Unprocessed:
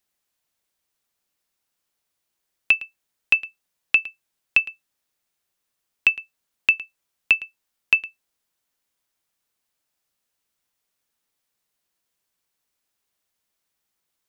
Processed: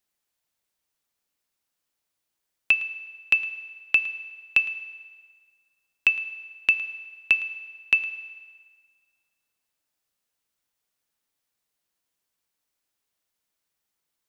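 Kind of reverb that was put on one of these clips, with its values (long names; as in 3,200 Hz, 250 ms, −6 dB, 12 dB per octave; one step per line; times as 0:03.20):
feedback delay network reverb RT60 1.7 s, low-frequency decay 0.8×, high-frequency decay 0.9×, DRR 12.5 dB
level −3 dB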